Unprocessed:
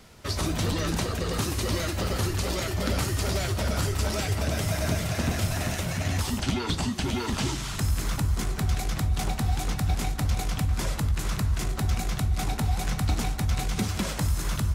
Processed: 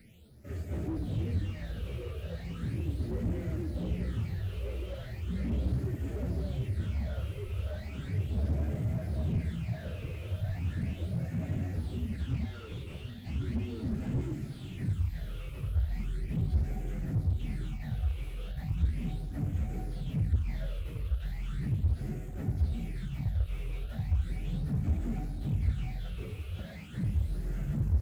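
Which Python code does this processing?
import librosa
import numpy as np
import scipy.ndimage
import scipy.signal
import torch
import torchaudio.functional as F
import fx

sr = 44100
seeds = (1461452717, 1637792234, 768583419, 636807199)

p1 = fx.highpass(x, sr, hz=74.0, slope=6)
p2 = fx.low_shelf(p1, sr, hz=330.0, db=6.0)
p3 = fx.hum_notches(p2, sr, base_hz=50, count=9)
p4 = fx.stretch_vocoder_free(p3, sr, factor=1.9)
p5 = fx.fixed_phaser(p4, sr, hz=2500.0, stages=4)
p6 = fx.quant_companded(p5, sr, bits=4)
p7 = p5 + F.gain(torch.from_numpy(p6), -6.5).numpy()
p8 = fx.phaser_stages(p7, sr, stages=8, low_hz=220.0, high_hz=3900.0, hz=0.37, feedback_pct=35)
p9 = p8 + fx.echo_single(p8, sr, ms=472, db=-17.5, dry=0)
p10 = fx.slew_limit(p9, sr, full_power_hz=18.0)
y = F.gain(torch.from_numpy(p10), -8.0).numpy()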